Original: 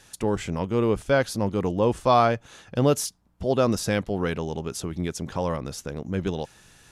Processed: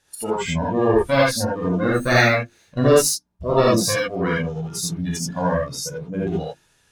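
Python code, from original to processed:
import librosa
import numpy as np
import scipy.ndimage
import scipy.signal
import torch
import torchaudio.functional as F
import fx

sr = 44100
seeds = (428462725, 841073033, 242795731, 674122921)

y = fx.lower_of_two(x, sr, delay_ms=0.48, at=(1.77, 2.86))
y = fx.hum_notches(y, sr, base_hz=50, count=7)
y = fx.clip_asym(y, sr, top_db=-29.0, bottom_db=-14.0)
y = fx.noise_reduce_blind(y, sr, reduce_db=18)
y = fx.rev_gated(y, sr, seeds[0], gate_ms=100, shape='rising', drr_db=-5.5)
y = F.gain(torch.from_numpy(y), 4.5).numpy()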